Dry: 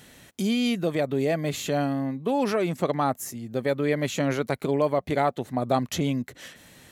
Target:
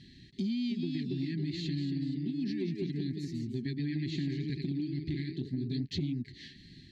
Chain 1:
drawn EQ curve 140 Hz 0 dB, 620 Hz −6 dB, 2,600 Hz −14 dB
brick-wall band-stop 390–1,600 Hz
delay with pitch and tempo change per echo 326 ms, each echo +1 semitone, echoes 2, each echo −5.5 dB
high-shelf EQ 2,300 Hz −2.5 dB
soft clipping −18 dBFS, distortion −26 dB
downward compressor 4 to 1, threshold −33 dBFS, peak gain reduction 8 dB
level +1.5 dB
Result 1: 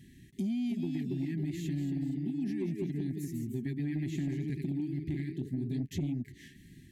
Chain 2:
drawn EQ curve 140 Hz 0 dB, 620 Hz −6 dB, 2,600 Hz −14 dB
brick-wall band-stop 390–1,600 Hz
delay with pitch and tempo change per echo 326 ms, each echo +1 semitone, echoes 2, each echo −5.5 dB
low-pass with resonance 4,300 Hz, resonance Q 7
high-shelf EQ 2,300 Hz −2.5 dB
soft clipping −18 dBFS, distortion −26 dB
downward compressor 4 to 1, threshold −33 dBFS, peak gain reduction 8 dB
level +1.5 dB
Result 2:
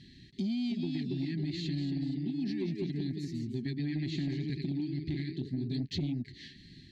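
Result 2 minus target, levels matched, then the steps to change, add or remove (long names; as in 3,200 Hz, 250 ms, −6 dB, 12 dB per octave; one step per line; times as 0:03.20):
soft clipping: distortion +16 dB
change: soft clipping −9.5 dBFS, distortion −41 dB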